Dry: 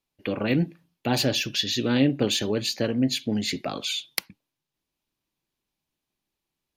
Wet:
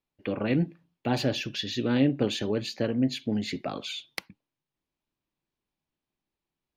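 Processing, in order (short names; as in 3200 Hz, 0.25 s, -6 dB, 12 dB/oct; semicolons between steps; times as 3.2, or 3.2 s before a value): LPF 2300 Hz 6 dB/oct; gain -2 dB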